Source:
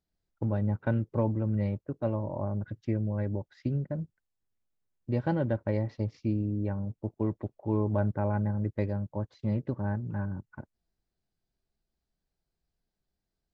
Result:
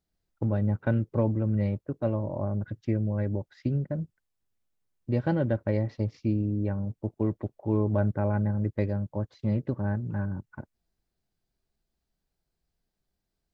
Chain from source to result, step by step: dynamic bell 920 Hz, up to -5 dB, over -51 dBFS, Q 4; trim +2.5 dB

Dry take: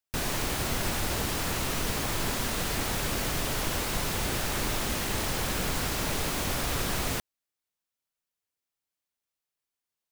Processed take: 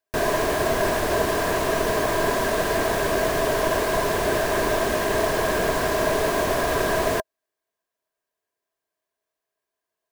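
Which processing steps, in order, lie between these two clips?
peaking EQ 640 Hz +6 dB 0.21 oct; small resonant body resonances 420/640/1000/1600 Hz, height 15 dB, ringing for 25 ms; short-mantissa float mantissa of 4-bit

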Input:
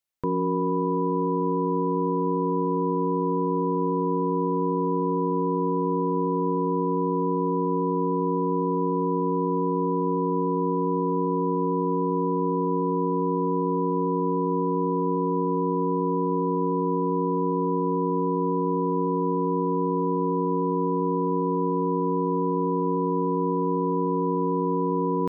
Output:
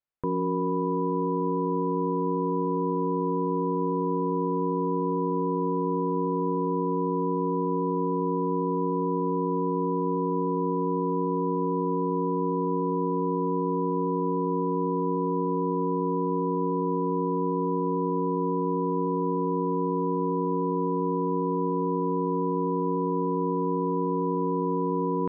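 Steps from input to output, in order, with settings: low-pass 2 kHz; trim -2 dB

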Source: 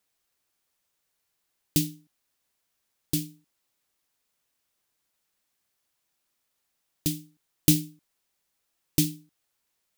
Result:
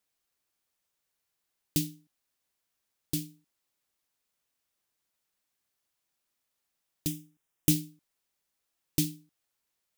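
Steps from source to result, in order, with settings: 7.07–7.70 s: peaking EQ 4.3 kHz -14 dB 0.26 oct; trim -4.5 dB

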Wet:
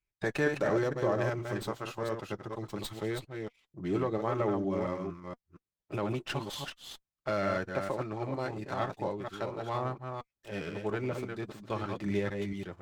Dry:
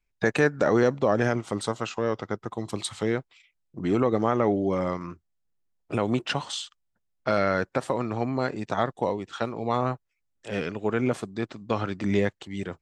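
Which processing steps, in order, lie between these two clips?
chunks repeated in reverse 232 ms, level -5 dB; comb of notches 240 Hz; sliding maximum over 3 samples; trim -6.5 dB

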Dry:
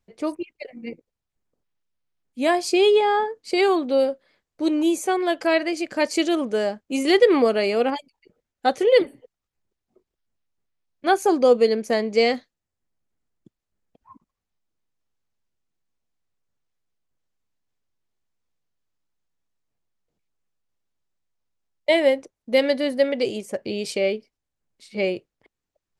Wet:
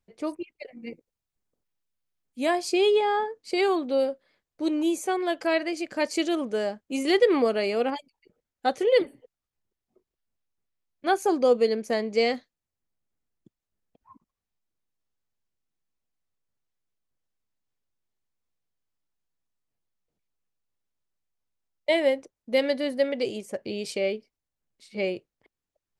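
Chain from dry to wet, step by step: 0.82–2.46 s: treble shelf 5.5 kHz +6 dB; trim -4.5 dB

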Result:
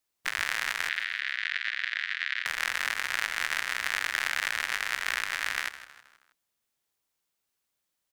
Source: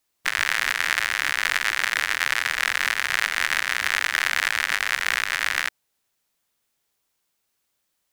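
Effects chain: 0.89–2.46 s: Chebyshev band-pass 1.7–3.9 kHz, order 2; on a send: frequency-shifting echo 159 ms, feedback 44%, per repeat -78 Hz, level -14.5 dB; on the sum: trim -7 dB

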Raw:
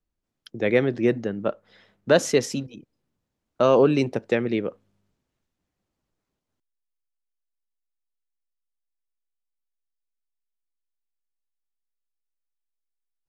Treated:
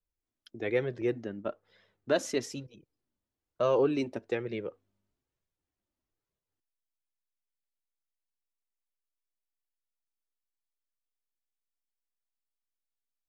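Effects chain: 1.01–1.49 s: gate with hold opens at -24 dBFS; flange 1.1 Hz, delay 1.7 ms, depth 1.8 ms, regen -27%; trim -6 dB

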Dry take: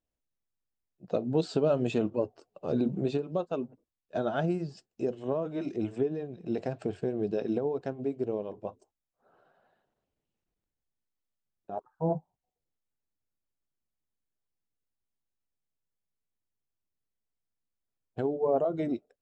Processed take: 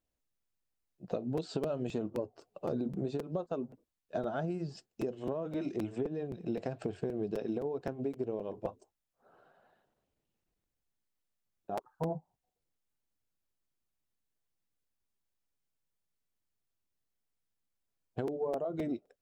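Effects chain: 1.90–4.46 s: dynamic bell 2.7 kHz, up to -7 dB, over -55 dBFS, Q 1.5; compression 6:1, threshold -33 dBFS, peak gain reduction 11.5 dB; crackling interface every 0.26 s, samples 256, repeat, from 0.85 s; trim +1.5 dB

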